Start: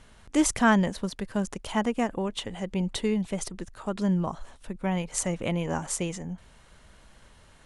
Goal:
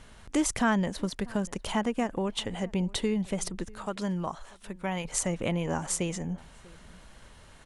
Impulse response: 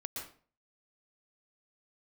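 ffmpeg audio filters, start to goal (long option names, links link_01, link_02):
-filter_complex "[0:a]asettb=1/sr,asplit=3[link_01][link_02][link_03];[link_01]atrim=end=3.854[link_04];[link_02]atrim=start=3.85:end=5.05,asetpts=PTS-STARTPTS,afade=type=in:duration=0.004:curve=qsin,afade=type=out:start_time=1.196:duration=0.004:curve=qsin,lowshelf=frequency=490:gain=-9[link_05];[link_03]atrim=start=5.046[link_06];[link_04][link_05]acrossfade=duration=0.004:curve1=hsin:curve2=qsin[link_07];[link_07][link_06]acrossfade=duration=0.004:curve1=qsin:curve2=hsin,acompressor=threshold=-30dB:ratio=2,asplit=2[link_08][link_09];[link_09]adelay=641.4,volume=-23dB,highshelf=frequency=4000:gain=-14.4[link_10];[link_08][link_10]amix=inputs=2:normalize=0,volume=2.5dB"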